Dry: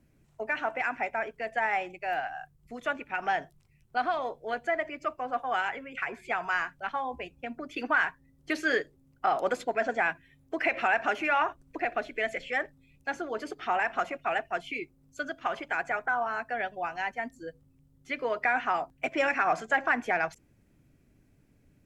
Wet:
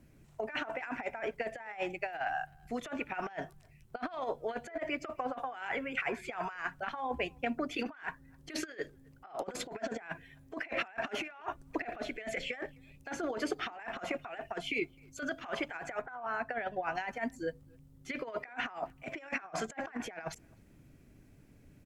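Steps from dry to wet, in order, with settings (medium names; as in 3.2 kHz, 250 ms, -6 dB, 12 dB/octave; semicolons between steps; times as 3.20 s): 16.01–16.95 s: treble shelf 4.3 kHz -9 dB; compressor with a negative ratio -35 dBFS, ratio -0.5; speakerphone echo 260 ms, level -28 dB; trim -1.5 dB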